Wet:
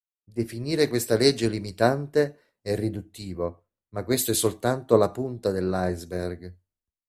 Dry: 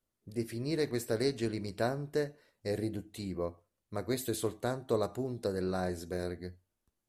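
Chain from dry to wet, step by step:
multiband upward and downward expander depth 100%
level +8.5 dB

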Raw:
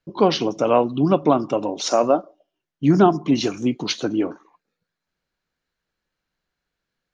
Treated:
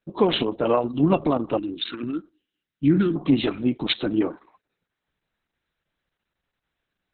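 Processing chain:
brickwall limiter −8 dBFS, peak gain reduction 4.5 dB
0:01.57–0:03.16: elliptic band-stop filter 340–1,500 Hz, stop band 80 dB
Opus 6 kbit/s 48,000 Hz

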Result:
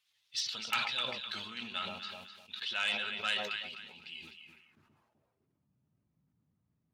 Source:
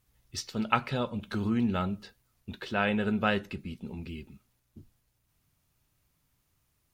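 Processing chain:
spectral magnitudes quantised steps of 15 dB
on a send: delay that swaps between a low-pass and a high-pass 127 ms, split 850 Hz, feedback 53%, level −4.5 dB
on the sum: band-pass filter sweep 3,500 Hz → 220 Hz, 0:04.34–0:05.71
in parallel at −10.5 dB: sine wavefolder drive 12 dB, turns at −18.5 dBFS
on the sum: high-pass filter 70 Hz
parametric band 340 Hz −6 dB 1.8 octaves
level that may fall only so fast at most 51 dB per second

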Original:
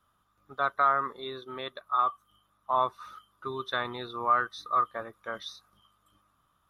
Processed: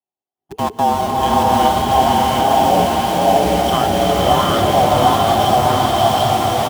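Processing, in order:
on a send: bouncing-ball delay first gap 740 ms, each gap 0.75×, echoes 5
on the sum: noise gate with hold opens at −55 dBFS
automatic gain control gain up to 14.5 dB
in parallel at −3.5 dB: comparator with hysteresis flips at −31 dBFS
on the sum: frequency shifter −460 Hz
high-pass filter 83 Hz
notch filter 450 Hz, Q 15
slow-attack reverb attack 720 ms, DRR −4.5 dB
level −4.5 dB

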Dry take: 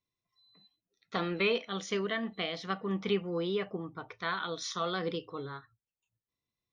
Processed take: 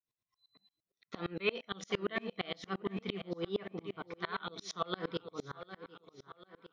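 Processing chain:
high-shelf EQ 6,600 Hz −4 dB
tape delay 753 ms, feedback 48%, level −10 dB, low-pass 5,700 Hz
tremolo with a ramp in dB swelling 8.7 Hz, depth 31 dB
level +3.5 dB

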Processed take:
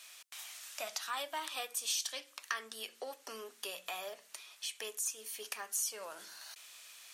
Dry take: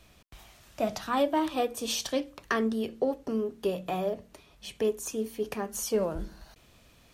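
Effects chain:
high-pass filter 1,400 Hz 12 dB per octave
parametric band 8,900 Hz +7.5 dB 1.5 octaves
downward compressor 2 to 1, threshold −49 dBFS, peak gain reduction 13 dB
level +6 dB

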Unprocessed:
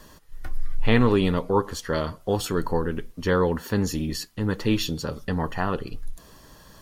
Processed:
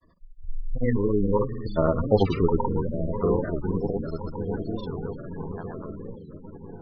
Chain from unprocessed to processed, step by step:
source passing by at 0:02.10, 21 m/s, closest 8.1 metres
on a send: echo whose low-pass opens from repeat to repeat 566 ms, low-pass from 200 Hz, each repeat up 2 octaves, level −6 dB
on the sum: floating-point word with a short mantissa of 2 bits
low-pass filter 5,900 Hz 24 dB per octave
gate on every frequency bin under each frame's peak −15 dB strong
granular cloud, pitch spread up and down by 0 semitones
wow of a warped record 45 rpm, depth 160 cents
level +7.5 dB

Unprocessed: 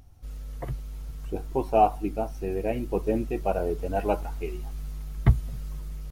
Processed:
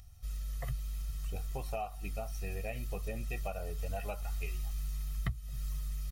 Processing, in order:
parametric band 530 Hz −2 dB 2.9 octaves
comb filter 1.6 ms, depth 68%
downward compressor 10 to 1, threshold −26 dBFS, peak gain reduction 17.5 dB
guitar amp tone stack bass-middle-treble 5-5-5
level +9 dB

